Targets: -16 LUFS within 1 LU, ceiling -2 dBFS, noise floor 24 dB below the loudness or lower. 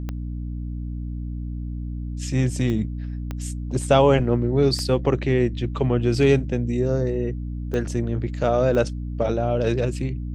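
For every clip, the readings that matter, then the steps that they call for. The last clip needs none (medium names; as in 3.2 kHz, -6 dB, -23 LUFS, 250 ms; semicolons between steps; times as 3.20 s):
clicks found 6; hum 60 Hz; highest harmonic 300 Hz; hum level -27 dBFS; loudness -23.5 LUFS; peak level -4.0 dBFS; loudness target -16.0 LUFS
-> de-click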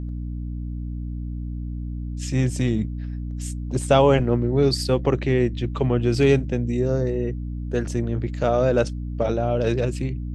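clicks found 0; hum 60 Hz; highest harmonic 300 Hz; hum level -27 dBFS
-> de-hum 60 Hz, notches 5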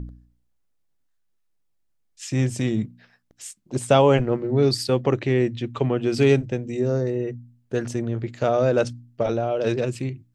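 hum not found; loudness -23.0 LUFS; peak level -4.0 dBFS; loudness target -16.0 LUFS
-> trim +7 dB; peak limiter -2 dBFS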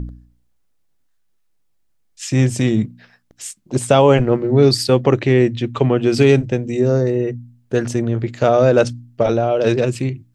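loudness -16.5 LUFS; peak level -2.0 dBFS; noise floor -62 dBFS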